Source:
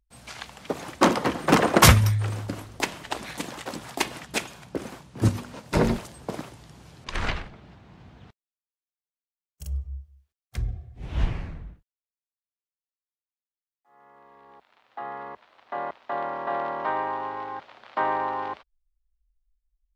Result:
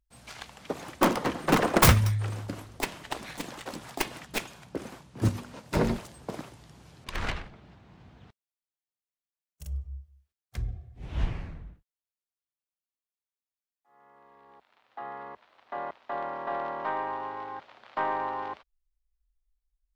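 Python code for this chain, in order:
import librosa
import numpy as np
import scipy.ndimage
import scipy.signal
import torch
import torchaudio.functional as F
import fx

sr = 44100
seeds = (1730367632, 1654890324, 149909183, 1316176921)

y = fx.tracing_dist(x, sr, depth_ms=0.4)
y = y * 10.0 ** (-4.0 / 20.0)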